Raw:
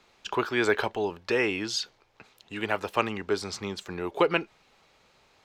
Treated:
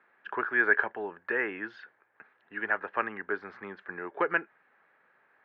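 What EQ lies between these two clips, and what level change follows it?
HPF 210 Hz 12 dB/oct; ladder low-pass 1800 Hz, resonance 75%; +4.5 dB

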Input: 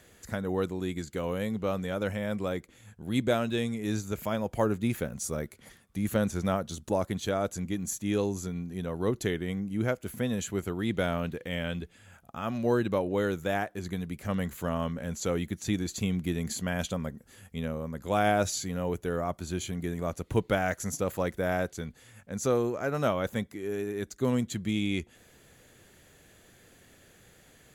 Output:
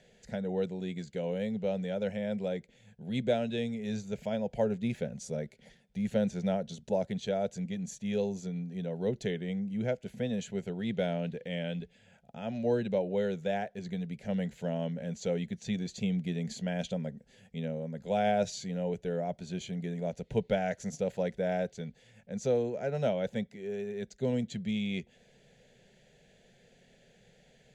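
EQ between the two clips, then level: air absorption 120 m; fixed phaser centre 310 Hz, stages 6; 0.0 dB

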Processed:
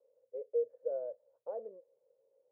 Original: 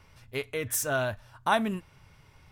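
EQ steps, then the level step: Butterworth band-pass 510 Hz, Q 6.7; air absorption 410 m; +7.5 dB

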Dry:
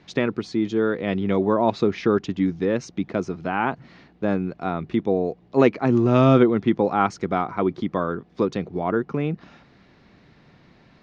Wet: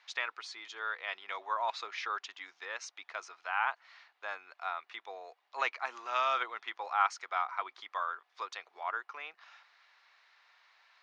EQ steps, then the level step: HPF 950 Hz 24 dB/oct; -4.0 dB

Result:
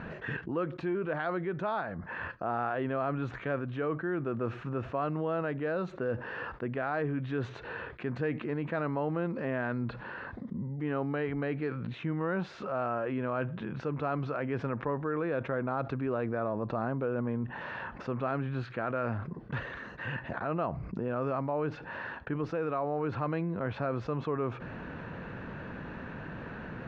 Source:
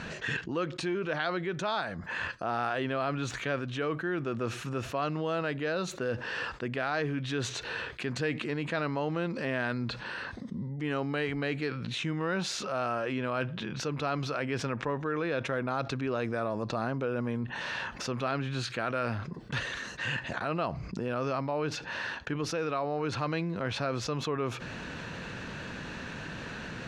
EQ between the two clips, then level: LPF 1500 Hz 12 dB/oct; 0.0 dB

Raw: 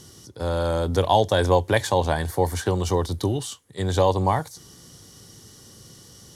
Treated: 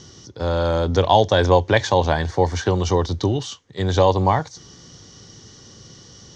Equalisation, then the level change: elliptic low-pass 6300 Hz, stop band 70 dB; +4.5 dB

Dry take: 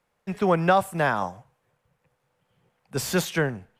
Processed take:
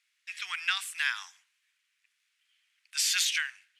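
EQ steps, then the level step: inverse Chebyshev high-pass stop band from 620 Hz, stop band 60 dB; air absorption 74 m; high shelf 8000 Hz +9.5 dB; +7.5 dB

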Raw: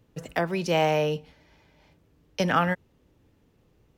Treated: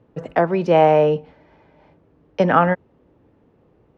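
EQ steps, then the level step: band-pass 800 Hz, Q 0.61; tilt -2.5 dB/oct; +9.0 dB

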